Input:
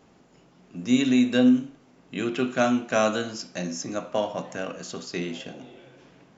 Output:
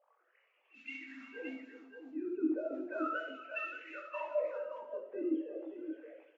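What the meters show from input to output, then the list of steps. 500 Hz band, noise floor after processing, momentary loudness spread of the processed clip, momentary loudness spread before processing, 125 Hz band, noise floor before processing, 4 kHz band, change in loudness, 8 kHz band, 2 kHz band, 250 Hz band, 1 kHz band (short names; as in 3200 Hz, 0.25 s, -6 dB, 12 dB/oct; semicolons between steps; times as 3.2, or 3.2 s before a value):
-10.5 dB, -75 dBFS, 12 LU, 18 LU, under -40 dB, -57 dBFS, -23.5 dB, -14.5 dB, n/a, -10.5 dB, -16.0 dB, -12.5 dB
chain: sine-wave speech; notches 50/100/150/200/250/300 Hz; dynamic EQ 380 Hz, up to -5 dB, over -43 dBFS, Q 7.7; compressor 8:1, threshold -33 dBFS, peak gain reduction 20 dB; modulation noise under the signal 21 dB; wah 0.35 Hz 240–2700 Hz, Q 5; doubler 22 ms -4.5 dB; on a send: tapped delay 68/356/575 ms -6.5/-13/-7 dB; on the sum: Schroeder reverb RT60 1 s, DRR 12.5 dB; gain +7 dB; AAC 24 kbps 44100 Hz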